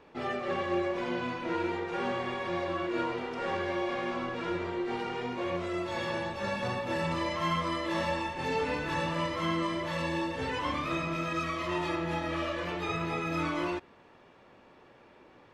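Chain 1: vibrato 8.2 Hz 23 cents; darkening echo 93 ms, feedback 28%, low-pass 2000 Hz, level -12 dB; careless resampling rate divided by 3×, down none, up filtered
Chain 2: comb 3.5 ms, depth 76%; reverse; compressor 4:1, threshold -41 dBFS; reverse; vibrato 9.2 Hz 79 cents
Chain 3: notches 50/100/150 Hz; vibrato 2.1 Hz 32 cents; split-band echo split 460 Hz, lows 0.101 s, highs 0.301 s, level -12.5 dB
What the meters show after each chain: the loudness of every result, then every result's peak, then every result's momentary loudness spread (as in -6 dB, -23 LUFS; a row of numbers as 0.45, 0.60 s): -32.0, -41.5, -32.0 LUFS; -17.5, -29.5, -18.5 dBFS; 3, 3, 3 LU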